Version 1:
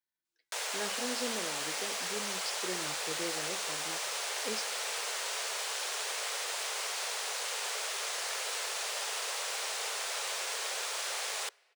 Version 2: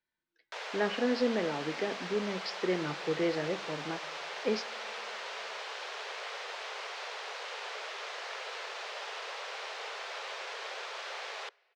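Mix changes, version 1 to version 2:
speech +10.0 dB
master: add high-frequency loss of the air 220 metres

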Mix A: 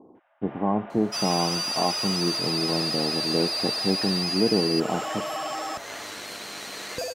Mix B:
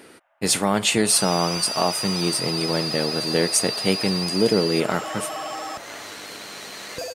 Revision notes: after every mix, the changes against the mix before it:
speech: remove Chebyshev low-pass with heavy ripple 1,100 Hz, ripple 6 dB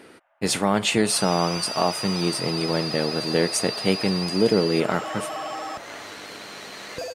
master: add high-shelf EQ 5,800 Hz −8.5 dB

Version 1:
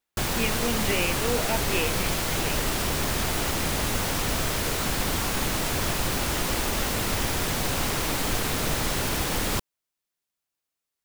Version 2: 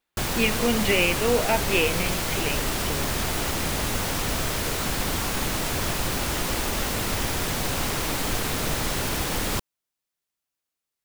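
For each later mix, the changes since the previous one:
speech +6.0 dB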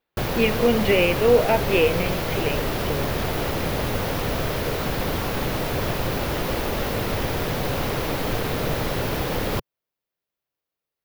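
master: add octave-band graphic EQ 125/500/8,000 Hz +5/+7/−12 dB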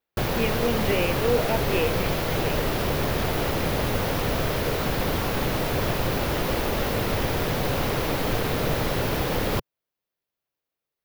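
speech −7.0 dB

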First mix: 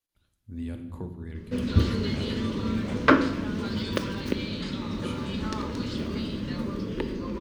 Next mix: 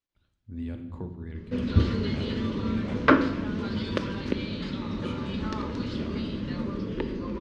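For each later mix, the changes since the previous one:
master: add high-frequency loss of the air 110 metres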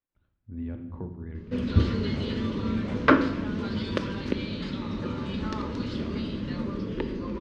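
speech: add low-pass filter 1,900 Hz 12 dB per octave

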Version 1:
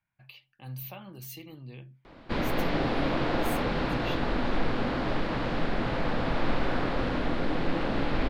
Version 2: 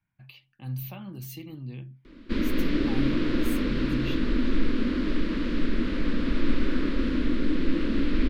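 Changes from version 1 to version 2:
background: add phaser with its sweep stopped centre 320 Hz, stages 4
master: add low shelf with overshoot 360 Hz +6 dB, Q 1.5

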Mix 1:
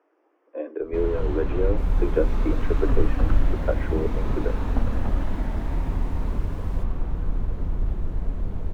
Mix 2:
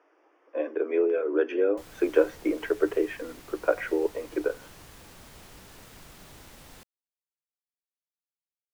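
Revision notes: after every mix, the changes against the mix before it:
speech +4.5 dB
first sound: muted
master: add spectral tilt +2.5 dB per octave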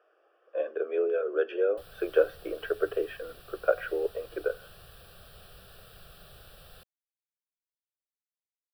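master: add phaser with its sweep stopped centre 1,400 Hz, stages 8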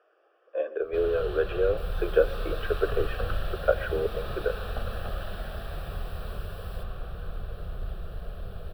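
first sound: unmuted
reverb: on, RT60 0.60 s

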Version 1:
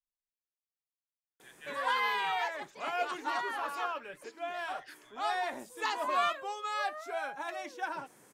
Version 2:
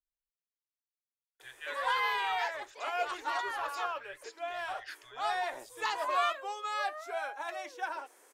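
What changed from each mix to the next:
speech +6.5 dB
background: add high-pass filter 380 Hz 24 dB per octave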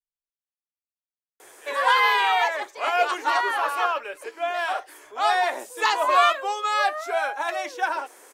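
speech −8.0 dB
background +11.5 dB

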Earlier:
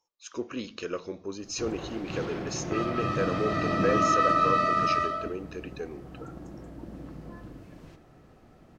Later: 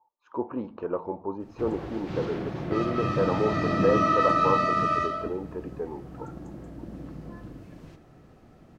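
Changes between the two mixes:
speech: add low-pass with resonance 880 Hz, resonance Q 10
master: add parametric band 150 Hz +3 dB 2.6 octaves

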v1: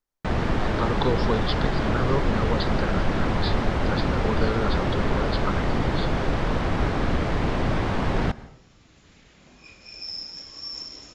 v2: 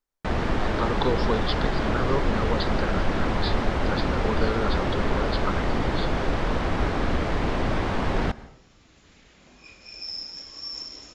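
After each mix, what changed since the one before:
master: add parametric band 130 Hz −4.5 dB 1.1 octaves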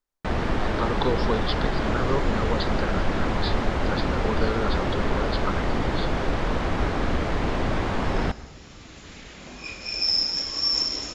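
second sound +12.0 dB

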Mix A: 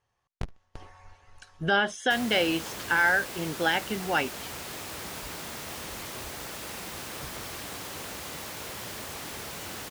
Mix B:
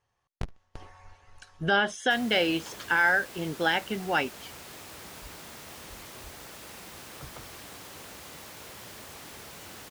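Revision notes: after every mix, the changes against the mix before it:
background −6.5 dB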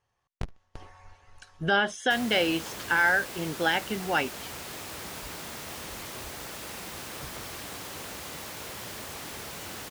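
background +5.5 dB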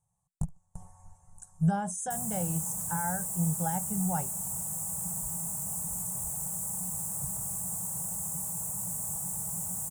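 master: add drawn EQ curve 100 Hz 0 dB, 180 Hz +11 dB, 260 Hz −20 dB, 370 Hz −18 dB, 840 Hz −3 dB, 1,600 Hz −21 dB, 2,900 Hz −30 dB, 4,700 Hz −23 dB, 7,800 Hz +15 dB, 14,000 Hz +7 dB

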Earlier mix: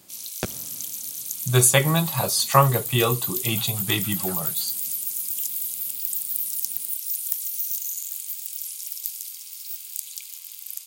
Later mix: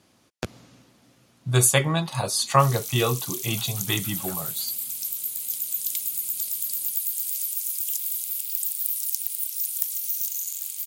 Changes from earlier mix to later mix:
background: entry +2.50 s
reverb: off

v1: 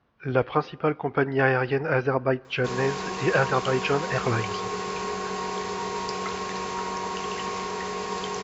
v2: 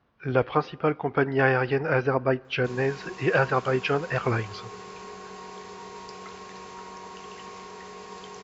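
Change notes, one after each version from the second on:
background −11.0 dB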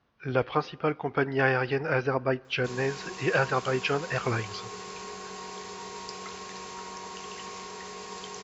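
speech −3.5 dB
master: add high-shelf EQ 3,500 Hz +9 dB

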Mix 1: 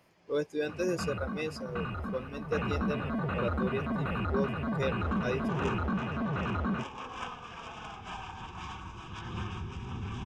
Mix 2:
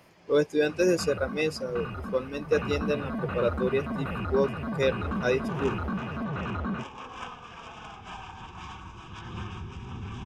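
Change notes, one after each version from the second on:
speech +8.0 dB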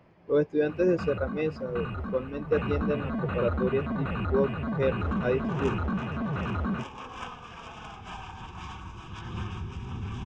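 speech: add head-to-tape spacing loss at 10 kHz 33 dB
master: add low-shelf EQ 180 Hz +4 dB

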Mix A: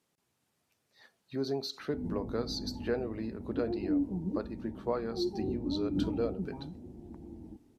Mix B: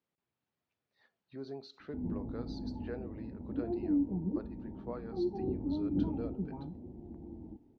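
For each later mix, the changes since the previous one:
speech −10.0 dB
master: add low-pass filter 3,500 Hz 12 dB per octave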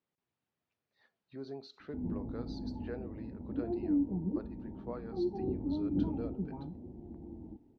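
reverb: off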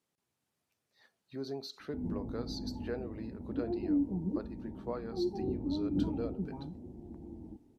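speech +4.0 dB
master: remove low-pass filter 3,500 Hz 12 dB per octave

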